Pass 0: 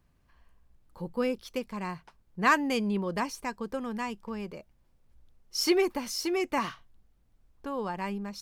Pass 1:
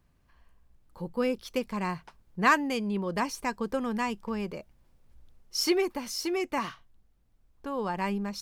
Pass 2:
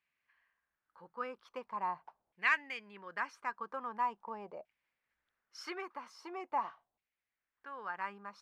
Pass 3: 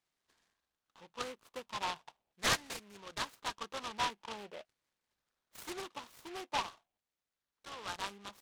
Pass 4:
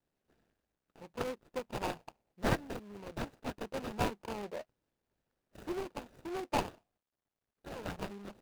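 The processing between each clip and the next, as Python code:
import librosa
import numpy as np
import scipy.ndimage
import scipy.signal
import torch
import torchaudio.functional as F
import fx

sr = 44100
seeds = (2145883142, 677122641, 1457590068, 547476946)

y1 = fx.rider(x, sr, range_db=4, speed_s=0.5)
y2 = fx.filter_lfo_bandpass(y1, sr, shape='saw_down', hz=0.43, low_hz=710.0, high_hz=2400.0, q=3.2)
y2 = y2 * 10.0 ** (1.0 / 20.0)
y3 = fx.noise_mod_delay(y2, sr, seeds[0], noise_hz=2000.0, depth_ms=0.12)
y3 = y3 * 10.0 ** (-1.0 / 20.0)
y4 = scipy.ndimage.median_filter(y3, 41, mode='constant')
y4 = y4 * 10.0 ** (8.5 / 20.0)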